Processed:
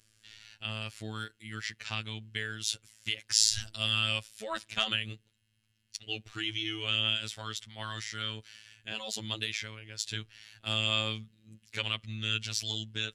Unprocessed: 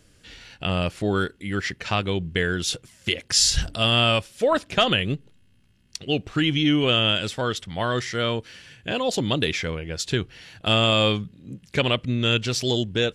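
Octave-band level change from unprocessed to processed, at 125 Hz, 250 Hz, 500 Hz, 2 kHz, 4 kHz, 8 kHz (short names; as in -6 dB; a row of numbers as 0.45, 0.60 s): -13.5, -18.5, -20.0, -9.0, -7.5, -6.0 dB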